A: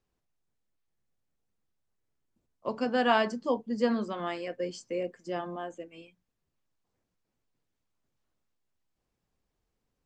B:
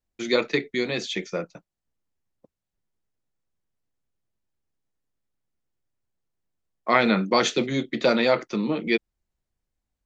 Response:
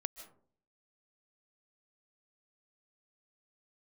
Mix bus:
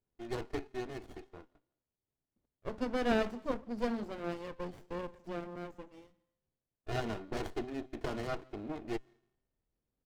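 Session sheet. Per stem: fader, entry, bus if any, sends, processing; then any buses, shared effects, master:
-2.5 dB, 0.00 s, send -12 dB, dry
-12.0 dB, 0.00 s, send -21.5 dB, Wiener smoothing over 9 samples; LPF 5300 Hz; comb 2.8 ms, depth 91%; auto duck -22 dB, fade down 1.75 s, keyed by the first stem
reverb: on, RT60 0.50 s, pre-delay 0.11 s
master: resonator 130 Hz, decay 0.98 s, harmonics all, mix 40%; running maximum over 33 samples

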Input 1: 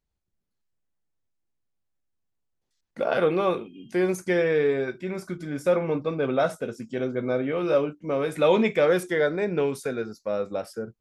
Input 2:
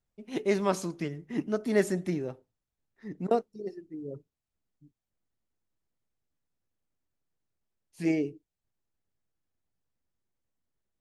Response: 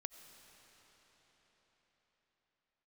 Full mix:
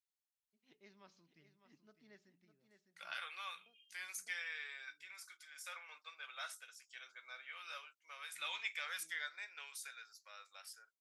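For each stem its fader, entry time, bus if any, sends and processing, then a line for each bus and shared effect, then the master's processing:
+0.5 dB, 0.00 s, no send, no echo send, Bessel high-pass 1500 Hz, order 4
-19.0 dB, 0.35 s, no send, echo send -10.5 dB, steep low-pass 5500 Hz; auto duck -13 dB, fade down 0.95 s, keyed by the first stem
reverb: off
echo: echo 0.605 s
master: passive tone stack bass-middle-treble 5-5-5; notches 60/120/180 Hz

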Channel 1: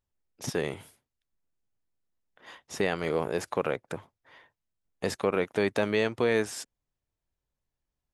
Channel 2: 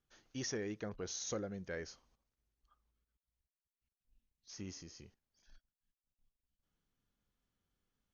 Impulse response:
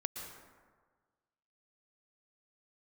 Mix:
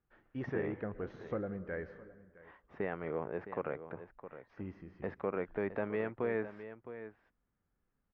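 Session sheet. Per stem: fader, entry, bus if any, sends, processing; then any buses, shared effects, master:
-9.0 dB, 0.00 s, no send, echo send -12 dB, dry
+0.5 dB, 0.00 s, send -8 dB, echo send -17 dB, dry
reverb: on, RT60 1.5 s, pre-delay 0.107 s
echo: echo 0.663 s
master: LPF 2000 Hz 24 dB/oct

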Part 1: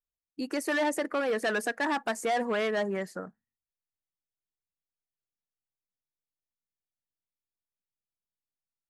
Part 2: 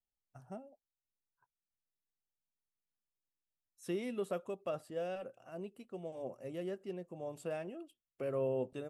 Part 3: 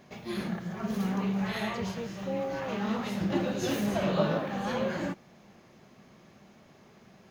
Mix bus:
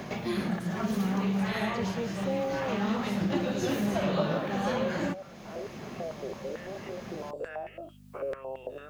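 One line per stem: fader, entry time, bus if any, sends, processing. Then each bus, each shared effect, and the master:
-15.5 dB, 0.00 s, no send, soft clip -34 dBFS, distortion -9 dB; hum 50 Hz, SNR 26 dB; three-band squash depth 70%
-1.0 dB, 0.00 s, no send, spectral dilation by 0.12 s; stepped band-pass 9 Hz 390–2100 Hz
+1.5 dB, 0.00 s, no send, dry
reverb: off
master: three-band squash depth 70%

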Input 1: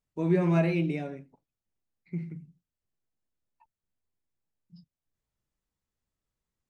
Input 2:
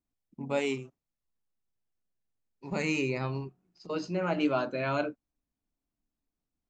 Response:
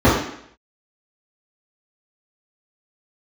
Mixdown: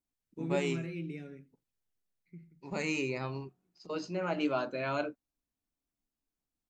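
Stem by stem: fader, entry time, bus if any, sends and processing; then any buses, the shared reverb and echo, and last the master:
2.12 s -5 dB -> 2.55 s -15.5 dB, 0.20 s, no send, band shelf 790 Hz -12 dB 1.1 oct; auto duck -8 dB, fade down 0.80 s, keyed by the second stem
-3.0 dB, 0.00 s, no send, tone controls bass -3 dB, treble +2 dB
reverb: off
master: dry

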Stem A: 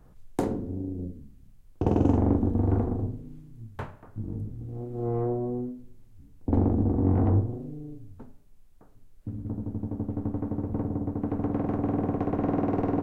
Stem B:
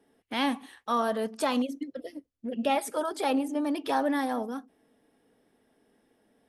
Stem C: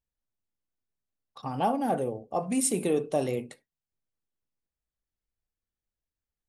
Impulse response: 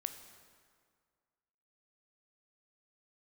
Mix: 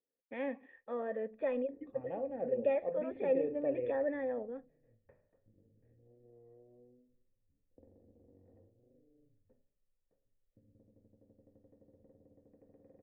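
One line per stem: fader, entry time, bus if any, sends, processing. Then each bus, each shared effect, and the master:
-14.0 dB, 1.30 s, no send, compressor 6:1, threshold -35 dBFS, peak gain reduction 17 dB; notches 50/100/150 Hz
+1.0 dB, 0.00 s, no send, gate with hold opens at -56 dBFS; vibrato 1.3 Hz 20 cents
-5.5 dB, 0.50 s, send -7.5 dB, dry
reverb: on, RT60 2.0 s, pre-delay 13 ms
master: vocal tract filter e; low shelf 340 Hz +6.5 dB

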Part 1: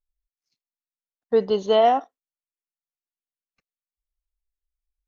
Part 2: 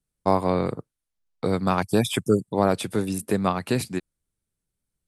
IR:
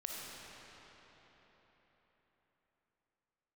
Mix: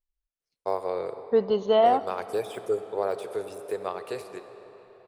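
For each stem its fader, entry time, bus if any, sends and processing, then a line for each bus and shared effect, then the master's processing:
-3.0 dB, 0.00 s, send -16.5 dB, high shelf 4900 Hz -11 dB
-12.5 dB, 0.40 s, send -6 dB, de-esser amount 70%; resonant low shelf 320 Hz -11 dB, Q 3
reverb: on, RT60 4.5 s, pre-delay 15 ms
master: dry

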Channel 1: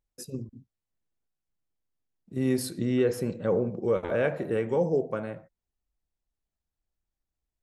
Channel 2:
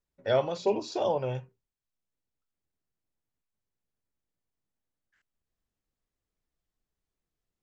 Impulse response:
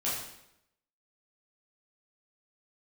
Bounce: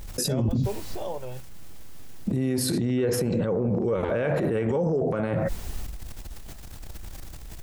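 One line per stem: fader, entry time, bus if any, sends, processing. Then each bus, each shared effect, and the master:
0.0 dB, 0.00 s, no send, low shelf 160 Hz +5.5 dB; transient shaper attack -4 dB, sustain +10 dB; fast leveller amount 100%
-6.0 dB, 0.00 s, no send, dry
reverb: off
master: limiter -17 dBFS, peak gain reduction 9.5 dB

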